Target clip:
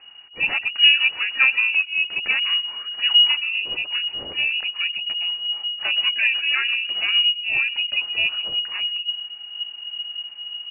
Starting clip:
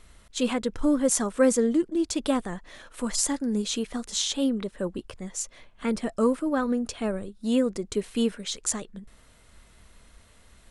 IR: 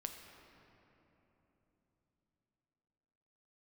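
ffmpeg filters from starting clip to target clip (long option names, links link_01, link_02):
-filter_complex "[0:a]asubboost=boost=7.5:cutoff=70,asplit=2[link_01][link_02];[link_02]adelay=124,lowpass=frequency=2300:poles=1,volume=-20.5dB,asplit=2[link_03][link_04];[link_04]adelay=124,lowpass=frequency=2300:poles=1,volume=0.23[link_05];[link_01][link_03][link_05]amix=inputs=3:normalize=0,asplit=3[link_06][link_07][link_08];[link_07]asetrate=33038,aresample=44100,atempo=1.33484,volume=-7dB[link_09];[link_08]asetrate=88200,aresample=44100,atempo=0.5,volume=-17dB[link_10];[link_06][link_09][link_10]amix=inputs=3:normalize=0,lowpass=frequency=2500:width_type=q:width=0.5098,lowpass=frequency=2500:width_type=q:width=0.6013,lowpass=frequency=2500:width_type=q:width=0.9,lowpass=frequency=2500:width_type=q:width=2.563,afreqshift=-2900,volume=3dB"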